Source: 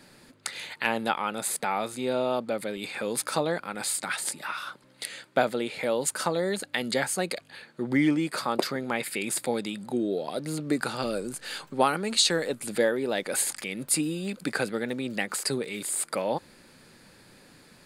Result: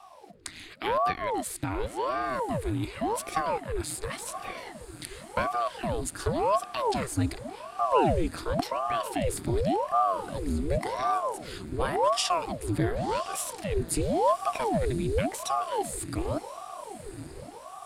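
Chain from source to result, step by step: resonant low shelf 290 Hz +11 dB, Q 3; diffused feedback echo 1.056 s, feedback 64%, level -14.5 dB; ring modulator with a swept carrier 520 Hz, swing 85%, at 0.9 Hz; gain -4 dB

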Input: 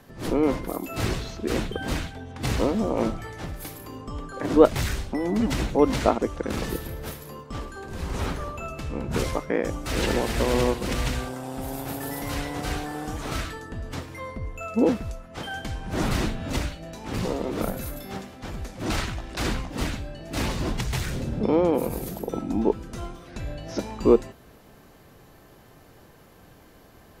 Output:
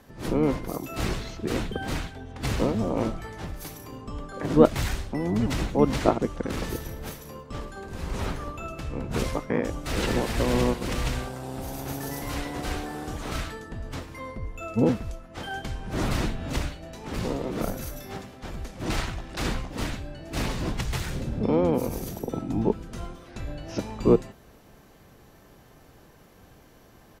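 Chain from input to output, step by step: added harmonics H 4 -43 dB, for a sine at -1.5 dBFS; harmoniser -12 st -5 dB; gain -2.5 dB

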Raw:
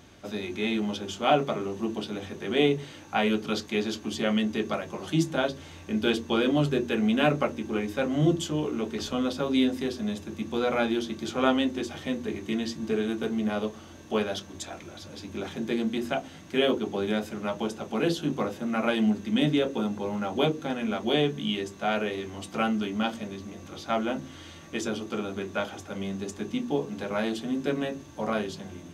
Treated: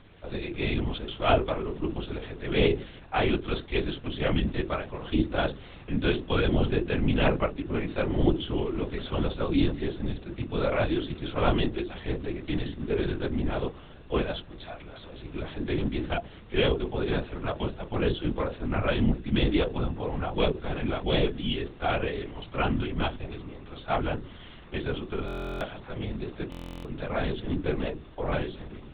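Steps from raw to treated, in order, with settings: LPC vocoder at 8 kHz whisper; stuck buffer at 25.26/26.5, samples 1024, times 14

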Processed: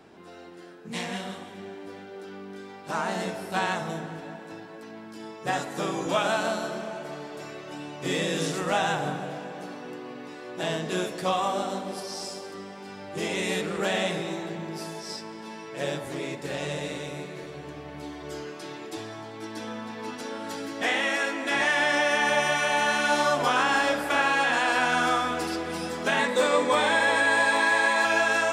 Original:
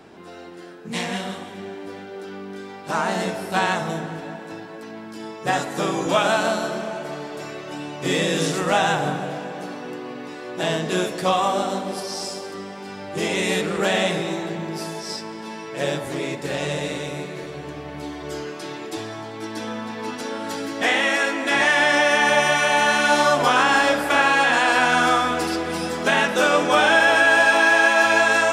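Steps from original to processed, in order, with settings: 26.19–28.05 ripple EQ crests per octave 1, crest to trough 11 dB; gain -6 dB

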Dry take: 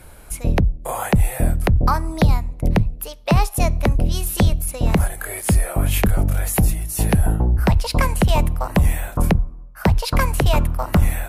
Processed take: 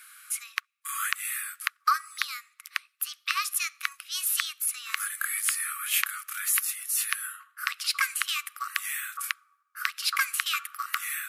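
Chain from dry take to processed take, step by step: brick-wall FIR high-pass 1100 Hz

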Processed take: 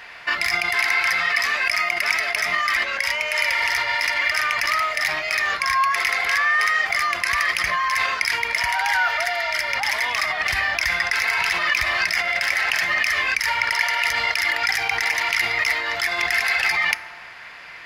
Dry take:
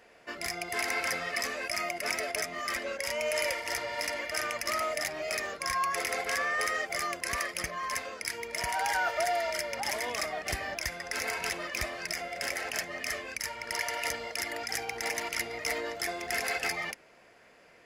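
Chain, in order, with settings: FDN reverb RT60 1.5 s, high-frequency decay 0.45×, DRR 16.5 dB; in parallel at +1 dB: negative-ratio compressor -39 dBFS, ratio -0.5; on the sum: ten-band EQ 250 Hz -8 dB, 500 Hz -11 dB, 1000 Hz +7 dB, 2000 Hz +7 dB, 4000 Hz +8 dB, 8000 Hz -6 dB; gain +3 dB

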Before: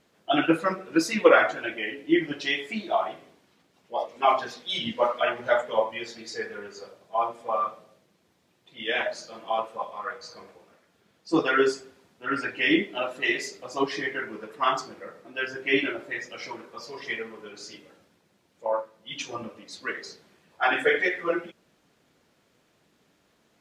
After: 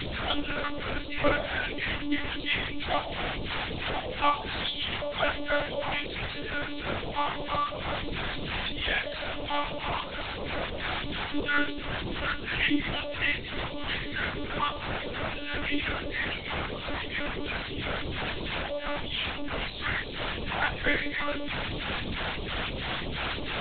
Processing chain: delta modulation 32 kbps, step -21 dBFS; in parallel at -12 dB: sine folder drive 9 dB, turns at -3 dBFS; on the sum: phaser stages 2, 3 Hz, lowest notch 110–1700 Hz; monotone LPC vocoder at 8 kHz 290 Hz; de-hum 51.59 Hz, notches 23; gain -8.5 dB

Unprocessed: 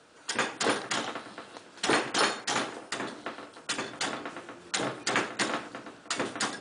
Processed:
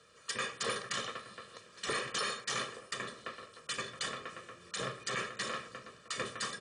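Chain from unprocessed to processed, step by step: bell 710 Hz -14.5 dB 0.48 oct; comb 1.7 ms, depth 79%; limiter -19.5 dBFS, peak gain reduction 9 dB; gain -5 dB

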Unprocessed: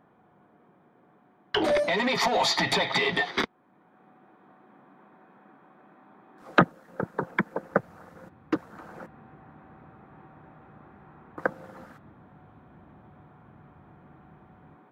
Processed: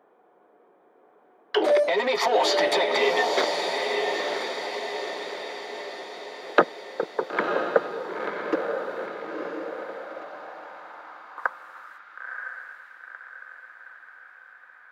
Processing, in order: diffused feedback echo 0.973 s, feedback 55%, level -3.5 dB; high-pass sweep 440 Hz -> 1600 Hz, 9.59–12.37; gain -1 dB

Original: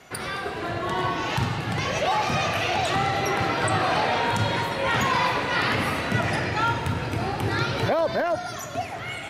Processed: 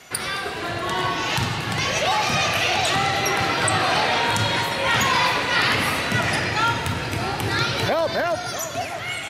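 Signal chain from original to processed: high shelf 2000 Hz +9.5 dB; outdoor echo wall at 110 m, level -13 dB

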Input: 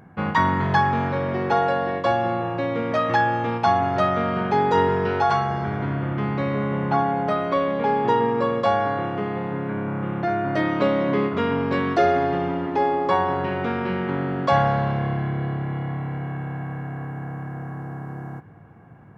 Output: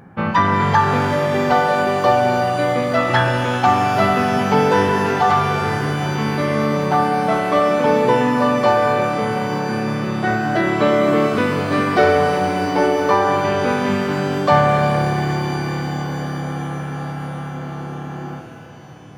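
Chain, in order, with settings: formant-preserving pitch shift +1 st; shimmer reverb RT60 3.7 s, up +12 st, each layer -8 dB, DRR 5 dB; gain +4.5 dB

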